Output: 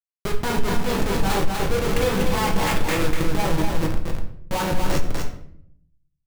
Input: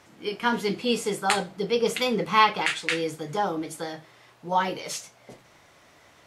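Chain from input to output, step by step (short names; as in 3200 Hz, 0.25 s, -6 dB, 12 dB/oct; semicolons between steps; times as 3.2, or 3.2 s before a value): Schmitt trigger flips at -27 dBFS; negative-ratio compressor -36 dBFS, ratio -1; echo 0.245 s -3.5 dB; shoebox room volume 120 m³, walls mixed, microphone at 0.68 m; maximiser +19.5 dB; gain -8.5 dB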